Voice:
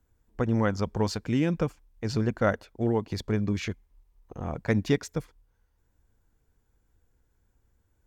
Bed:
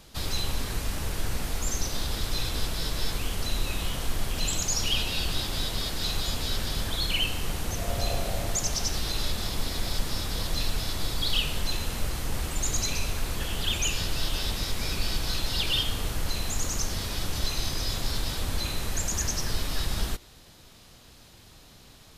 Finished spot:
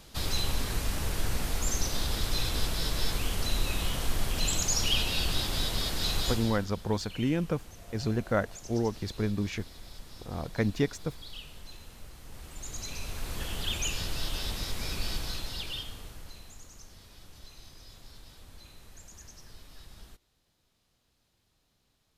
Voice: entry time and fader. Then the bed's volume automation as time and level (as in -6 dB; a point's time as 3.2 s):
5.90 s, -3.0 dB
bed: 6.3 s -0.5 dB
6.71 s -18 dB
12.18 s -18 dB
13.4 s -4.5 dB
15.14 s -4.5 dB
16.68 s -21.5 dB